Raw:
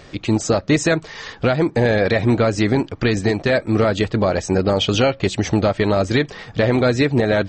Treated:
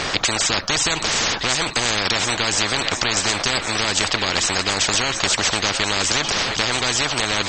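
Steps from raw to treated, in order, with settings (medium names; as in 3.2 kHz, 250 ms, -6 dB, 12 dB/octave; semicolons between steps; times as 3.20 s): thinning echo 713 ms, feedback 70%, level -21 dB; spectrum-flattening compressor 10:1; trim +4 dB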